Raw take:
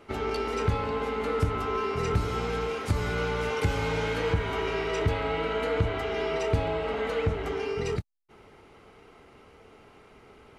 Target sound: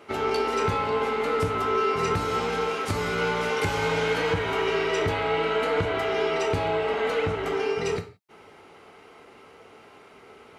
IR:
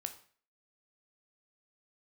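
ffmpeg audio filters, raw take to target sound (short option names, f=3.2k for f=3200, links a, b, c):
-filter_complex "[0:a]highpass=f=290:p=1[a];[1:a]atrim=start_sample=2205,afade=t=out:st=0.23:d=0.01,atrim=end_sample=10584[b];[a][b]afir=irnorm=-1:irlink=0,volume=7dB"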